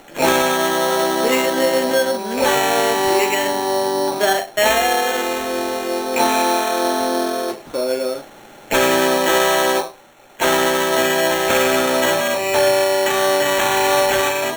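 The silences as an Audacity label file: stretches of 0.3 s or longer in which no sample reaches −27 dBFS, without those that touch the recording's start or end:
8.210000	8.710000	silence
9.890000	10.400000	silence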